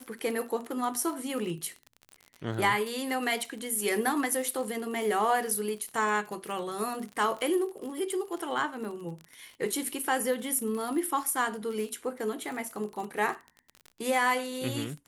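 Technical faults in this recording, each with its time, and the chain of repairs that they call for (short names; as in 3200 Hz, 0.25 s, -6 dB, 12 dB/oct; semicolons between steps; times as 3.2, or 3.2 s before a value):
crackle 39/s -35 dBFS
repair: de-click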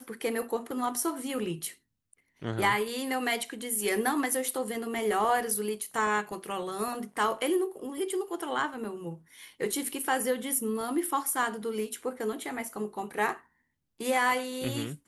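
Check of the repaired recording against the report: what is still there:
none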